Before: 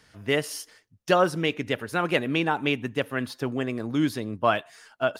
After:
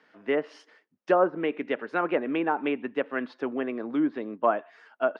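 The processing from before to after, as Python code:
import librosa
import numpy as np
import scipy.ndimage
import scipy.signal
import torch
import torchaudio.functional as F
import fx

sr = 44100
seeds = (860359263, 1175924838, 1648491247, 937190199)

y = scipy.signal.sosfilt(scipy.signal.butter(2, 2200.0, 'lowpass', fs=sr, output='sos'), x)
y = fx.env_lowpass_down(y, sr, base_hz=1200.0, full_db=-19.0)
y = scipy.signal.sosfilt(scipy.signal.butter(4, 240.0, 'highpass', fs=sr, output='sos'), y)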